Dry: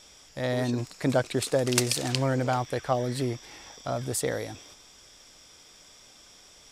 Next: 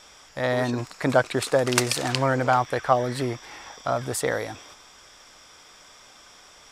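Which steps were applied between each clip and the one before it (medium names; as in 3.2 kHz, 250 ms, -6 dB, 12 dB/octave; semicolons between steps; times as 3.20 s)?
peaking EQ 1.2 kHz +10 dB 2 oct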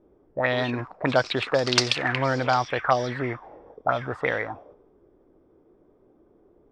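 touch-sensitive low-pass 330–4900 Hz up, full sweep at -18.5 dBFS; trim -2 dB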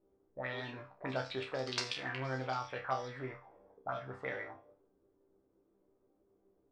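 chord resonator C2 fifth, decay 0.31 s; trim -5 dB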